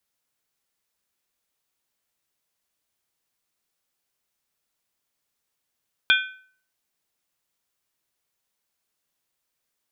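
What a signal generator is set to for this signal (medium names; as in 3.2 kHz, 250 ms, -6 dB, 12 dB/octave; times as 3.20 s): skin hit, lowest mode 1.52 kHz, modes 4, decay 0.50 s, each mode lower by 1.5 dB, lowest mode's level -15 dB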